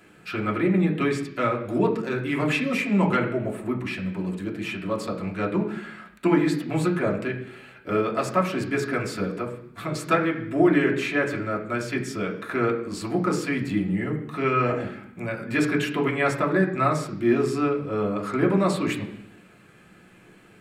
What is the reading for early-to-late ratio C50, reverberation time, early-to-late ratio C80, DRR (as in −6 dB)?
9.0 dB, 0.70 s, 11.5 dB, −2.5 dB